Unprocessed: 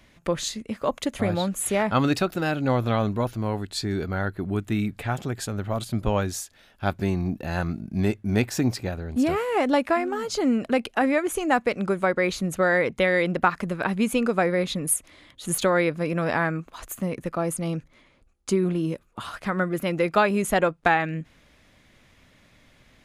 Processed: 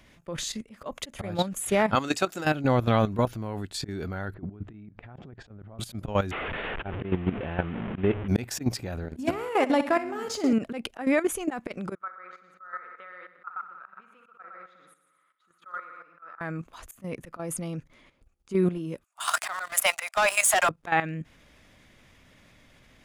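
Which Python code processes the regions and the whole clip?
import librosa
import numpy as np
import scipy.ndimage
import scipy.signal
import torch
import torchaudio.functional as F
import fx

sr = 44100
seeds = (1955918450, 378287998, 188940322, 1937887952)

y = fx.chain(x, sr, fx.highpass(hz=420.0, slope=6),
    fx.peak_eq(hz=7200.0, db=11.5, octaves=0.71), at=(1.95, 2.45))
y = fx.chain(y, sr, fx.over_compress(threshold_db=-33.0, ratio=-0.5),
    fx.spacing_loss(db_at_10k=41), at=(4.34, 5.79))
y = fx.chain(y, sr, fx.delta_mod(bps=16000, step_db=-29.0),
    fx.peak_eq(hz=430.0, db=6.5, octaves=0.57), at=(6.31, 8.28))
y = fx.chain(y, sr, fx.halfwave_gain(db=-3.0),
    fx.highpass(hz=110.0, slope=6),
    fx.room_flutter(wall_m=10.7, rt60_s=0.45), at=(9.04, 10.53))
y = fx.chain(y, sr, fx.bandpass_q(hz=1300.0, q=15.0),
    fx.echo_heads(ms=61, heads='first and second', feedback_pct=51, wet_db=-9.5), at=(11.95, 16.41))
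y = fx.chain(y, sr, fx.steep_highpass(hz=610.0, slope=96),
    fx.peak_eq(hz=8300.0, db=13.0, octaves=0.95),
    fx.leveller(passes=3), at=(19.04, 20.69))
y = fx.notch(y, sr, hz=4100.0, q=18.0)
y = fx.auto_swell(y, sr, attack_ms=122.0)
y = fx.level_steps(y, sr, step_db=12)
y = F.gain(torch.from_numpy(y), 3.0).numpy()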